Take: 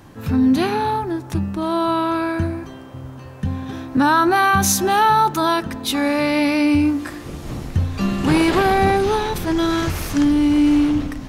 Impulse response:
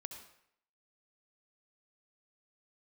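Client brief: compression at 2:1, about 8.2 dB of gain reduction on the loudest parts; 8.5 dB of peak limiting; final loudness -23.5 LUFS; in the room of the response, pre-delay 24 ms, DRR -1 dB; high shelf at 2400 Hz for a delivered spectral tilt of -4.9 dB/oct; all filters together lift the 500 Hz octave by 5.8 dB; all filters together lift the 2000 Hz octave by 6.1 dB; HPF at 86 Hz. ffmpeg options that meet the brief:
-filter_complex "[0:a]highpass=86,equalizer=f=500:t=o:g=8,equalizer=f=2k:t=o:g=4.5,highshelf=f=2.4k:g=6.5,acompressor=threshold=-23dB:ratio=2,alimiter=limit=-15.5dB:level=0:latency=1,asplit=2[a][b];[1:a]atrim=start_sample=2205,adelay=24[c];[b][c]afir=irnorm=-1:irlink=0,volume=4.5dB[d];[a][d]amix=inputs=2:normalize=0,volume=-4dB"

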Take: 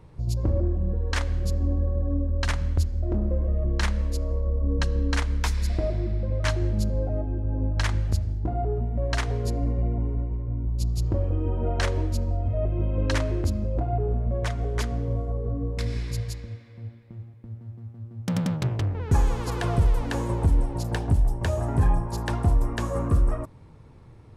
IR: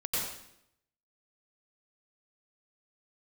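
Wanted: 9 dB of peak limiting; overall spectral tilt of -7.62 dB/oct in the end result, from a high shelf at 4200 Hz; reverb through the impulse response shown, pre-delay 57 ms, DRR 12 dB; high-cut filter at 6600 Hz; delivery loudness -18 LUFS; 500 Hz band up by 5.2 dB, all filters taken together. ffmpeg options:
-filter_complex "[0:a]lowpass=6.6k,equalizer=f=500:t=o:g=6.5,highshelf=f=4.2k:g=-3.5,alimiter=limit=-19.5dB:level=0:latency=1,asplit=2[a][b];[1:a]atrim=start_sample=2205,adelay=57[c];[b][c]afir=irnorm=-1:irlink=0,volume=-18.5dB[d];[a][d]amix=inputs=2:normalize=0,volume=10dB"

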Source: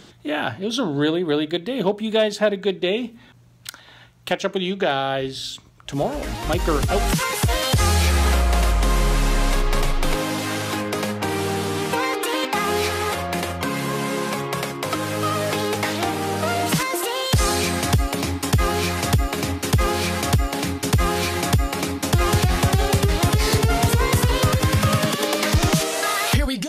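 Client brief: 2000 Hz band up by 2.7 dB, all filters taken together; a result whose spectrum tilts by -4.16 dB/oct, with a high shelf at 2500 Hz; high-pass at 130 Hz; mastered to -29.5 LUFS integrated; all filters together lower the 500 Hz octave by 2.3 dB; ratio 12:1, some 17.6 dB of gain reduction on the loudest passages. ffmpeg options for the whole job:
-af "highpass=130,equalizer=f=500:t=o:g=-3,equalizer=f=2k:t=o:g=6.5,highshelf=f=2.5k:g=-6.5,acompressor=threshold=-34dB:ratio=12,volume=8dB"

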